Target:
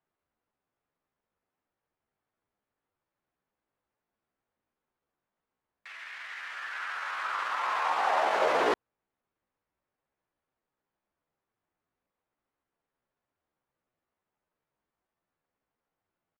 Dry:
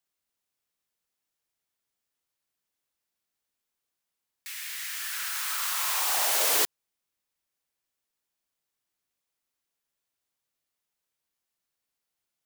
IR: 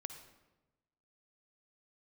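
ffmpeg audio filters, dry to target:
-af "lowpass=1300,lowshelf=frequency=64:gain=-2,atempo=0.76,volume=8.5dB"

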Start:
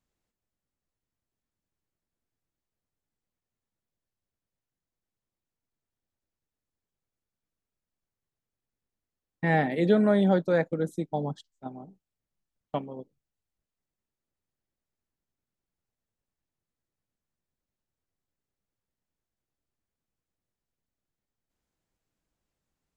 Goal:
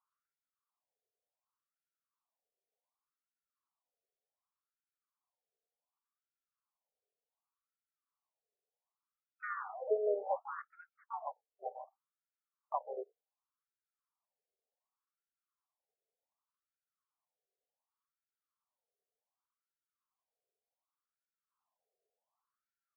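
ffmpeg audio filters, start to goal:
ffmpeg -i in.wav -filter_complex "[0:a]highpass=410,equalizer=frequency=420:width_type=q:width=4:gain=8,equalizer=frequency=610:width_type=q:width=4:gain=-5,equalizer=frequency=870:width_type=q:width=4:gain=-5,equalizer=frequency=1600:width_type=q:width=4:gain=-5,equalizer=frequency=2200:width_type=q:width=4:gain=6,equalizer=frequency=3200:width_type=q:width=4:gain=6,lowpass=frequency=3700:width=0.5412,lowpass=frequency=3700:width=1.3066,acompressor=threshold=-33dB:ratio=3,asplit=4[link_01][link_02][link_03][link_04];[link_02]asetrate=29433,aresample=44100,atempo=1.49831,volume=-13dB[link_05];[link_03]asetrate=35002,aresample=44100,atempo=1.25992,volume=-7dB[link_06];[link_04]asetrate=66075,aresample=44100,atempo=0.66742,volume=-15dB[link_07];[link_01][link_05][link_06][link_07]amix=inputs=4:normalize=0,highshelf=frequency=1600:width_type=q:width=3:gain=-11.5,afftfilt=real='re*between(b*sr/1024,530*pow(1900/530,0.5+0.5*sin(2*PI*0.67*pts/sr))/1.41,530*pow(1900/530,0.5+0.5*sin(2*PI*0.67*pts/sr))*1.41)':imag='im*between(b*sr/1024,530*pow(1900/530,0.5+0.5*sin(2*PI*0.67*pts/sr))/1.41,530*pow(1900/530,0.5+0.5*sin(2*PI*0.67*pts/sr))*1.41)':win_size=1024:overlap=0.75,volume=1.5dB" out.wav

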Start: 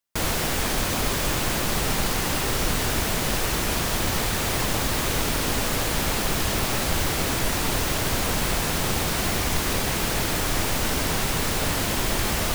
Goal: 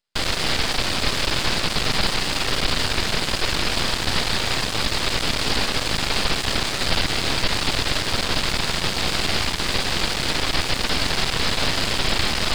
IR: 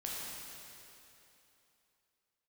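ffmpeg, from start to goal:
-af "aresample=11025,aresample=44100,crystalizer=i=4:c=0,aeval=exprs='max(val(0),0)':channel_layout=same,volume=4dB"

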